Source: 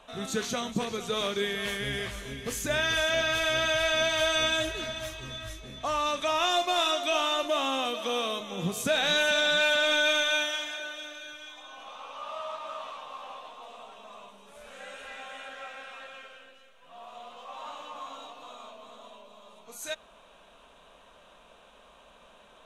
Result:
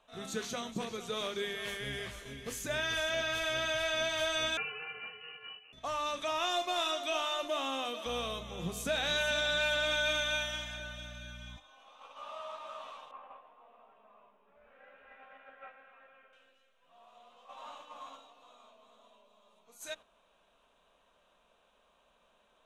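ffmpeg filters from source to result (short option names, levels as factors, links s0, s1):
-filter_complex "[0:a]asettb=1/sr,asplit=3[s0][s1][s2];[s0]atrim=end=4.574[s3];[s1]atrim=start=4.57:end=5.73,asetpts=PTS-STARTPTS,afade=t=in:d=0.004:c=qsin,afade=t=out:st=1.156:d=0.004:c=qsin,lowpass=f=2600:t=q:w=0.5098,lowpass=f=2600:t=q:w=0.6013,lowpass=f=2600:t=q:w=0.9,lowpass=f=2600:t=q:w=2.563,afreqshift=-3000[s4];[s2]atrim=start=5.726[s5];[s3][s4]acrossfade=d=0.004:c1=hsin:c2=qsin[s6];[s6][s5]acrossfade=d=0.004:c1=qsin:c2=hsin,asettb=1/sr,asplit=3[s7][s8][s9];[s7]atrim=end=8.064[s10];[s8]atrim=start=8.06:end=11.57,asetpts=PTS-STARTPTS,afade=t=in:d=0.004:c=qsin,afade=t=out:st=3.506:d=0.004:c=qsin,aeval=exprs='val(0)+0.01*(sin(2*PI*60*n/s)+sin(2*PI*2*60*n/s)/2+sin(2*PI*3*60*n/s)/3+sin(2*PI*4*60*n/s)/4+sin(2*PI*5*60*n/s)/5)':c=same[s11];[s9]atrim=start=11.566[s12];[s10][s11]acrossfade=d=0.004:c1=hsin:c2=qsin[s13];[s13][s12]acrossfade=d=0.004:c1=qsin:c2=hsin,asettb=1/sr,asplit=3[s14][s15][s16];[s14]atrim=end=13.114[s17];[s15]atrim=start=13.11:end=16.33,asetpts=PTS-STARTPTS,afade=t=in:d=0.004:c=qsin,afade=t=out:st=3.216:d=0.004:c=qsin,lowpass=f=2300:w=0.5412,lowpass=f=2300:w=1.3066[s18];[s16]atrim=start=16.326[s19];[s17][s18]acrossfade=d=0.004:c1=hsin:c2=qsin[s20];[s20][s19]acrossfade=d=0.004:c1=qsin:c2=hsin,bandreject=f=50:t=h:w=6,bandreject=f=100:t=h:w=6,bandreject=f=150:t=h:w=6,bandreject=f=200:t=h:w=6,bandreject=f=250:t=h:w=6,bandreject=f=300:t=h:w=6,agate=range=0.447:threshold=0.00794:ratio=16:detection=peak,volume=0.473"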